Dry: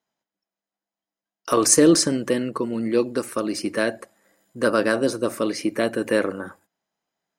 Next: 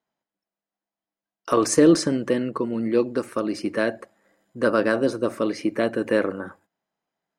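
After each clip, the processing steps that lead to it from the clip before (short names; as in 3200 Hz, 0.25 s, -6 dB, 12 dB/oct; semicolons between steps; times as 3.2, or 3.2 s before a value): LPF 2600 Hz 6 dB/oct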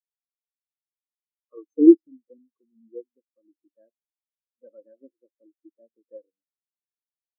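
spectral expander 4:1; gain +3.5 dB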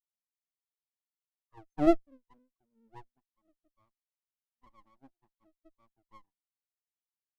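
minimum comb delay 0.98 ms; gain -8 dB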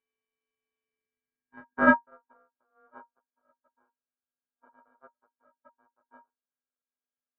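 sample sorter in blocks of 64 samples; low-pass sweep 1600 Hz -> 450 Hz, 0.81–2.17; ring modulator 940 Hz; gain +4 dB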